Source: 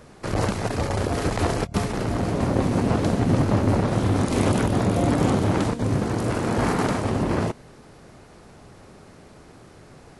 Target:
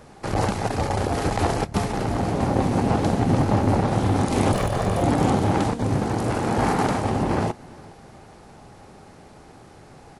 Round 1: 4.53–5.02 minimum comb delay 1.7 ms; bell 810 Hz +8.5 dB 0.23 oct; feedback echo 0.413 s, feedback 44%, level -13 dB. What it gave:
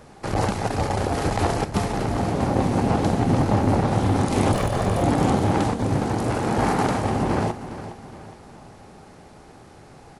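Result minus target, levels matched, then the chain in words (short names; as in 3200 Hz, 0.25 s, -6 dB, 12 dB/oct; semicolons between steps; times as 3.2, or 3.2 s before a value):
echo-to-direct +11 dB
4.53–5.02 minimum comb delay 1.7 ms; bell 810 Hz +8.5 dB 0.23 oct; feedback echo 0.413 s, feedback 44%, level -24 dB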